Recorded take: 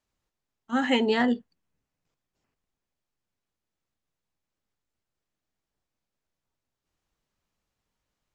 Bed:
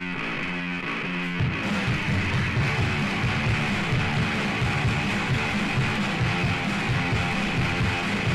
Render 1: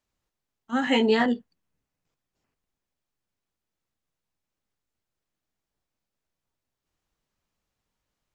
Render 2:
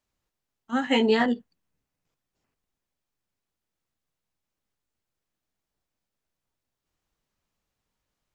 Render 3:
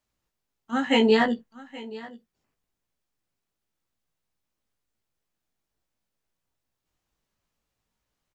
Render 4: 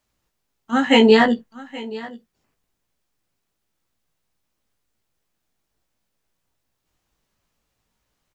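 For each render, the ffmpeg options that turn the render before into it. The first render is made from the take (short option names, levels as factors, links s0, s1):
-filter_complex "[0:a]asettb=1/sr,asplit=3[s0][s1][s2];[s0]atrim=end=0.854[s3];[s1]atrim=start=0.85:end=1.26,asetpts=PTS-STARTPTS,afade=t=in:d=0.004:c=qsin,afade=t=out:st=0.406:d=0.004:c=qsin,asplit=2[s4][s5];[s5]adelay=18,volume=0.668[s6];[s4][s6]amix=inputs=2:normalize=0,atrim=end_sample=18081[s7];[s2]atrim=start=1.256[s8];[s3][s7]acrossfade=d=0.004:c1=hsin:c2=qsin[s9];[s9][s8]acrossfade=d=0.004:c1=qsin:c2=hsin"
-filter_complex "[0:a]asplit=3[s0][s1][s2];[s0]afade=t=out:st=0.78:d=0.02[s3];[s1]agate=range=0.0224:threshold=0.0708:ratio=3:release=100:detection=peak,afade=t=in:st=0.78:d=0.02,afade=t=out:st=1.35:d=0.02[s4];[s2]afade=t=in:st=1.35:d=0.02[s5];[s3][s4][s5]amix=inputs=3:normalize=0"
-filter_complex "[0:a]asplit=2[s0][s1];[s1]adelay=18,volume=0.422[s2];[s0][s2]amix=inputs=2:normalize=0,aecho=1:1:826:0.112"
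-af "volume=2.24,alimiter=limit=0.794:level=0:latency=1"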